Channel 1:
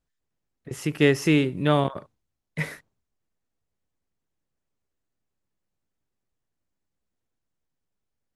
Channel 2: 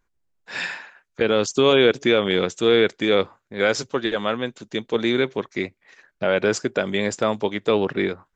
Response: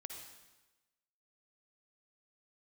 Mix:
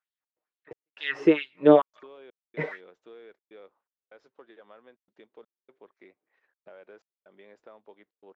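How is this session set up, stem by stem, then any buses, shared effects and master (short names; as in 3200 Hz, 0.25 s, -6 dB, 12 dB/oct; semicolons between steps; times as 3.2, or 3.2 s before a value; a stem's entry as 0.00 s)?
+2.0 dB, 0.00 s, no send, comb 6.5 ms, depth 60%; LFO high-pass sine 2.2 Hz 350–3800 Hz
-14.0 dB, 0.45 s, no send, HPF 440 Hz 12 dB/oct; compressor 3:1, threshold -33 dBFS, peak gain reduction 14 dB; modulation noise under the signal 22 dB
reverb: off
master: step gate "xx.xxx..xxxxx" 124 bpm -60 dB; tape spacing loss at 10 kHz 41 dB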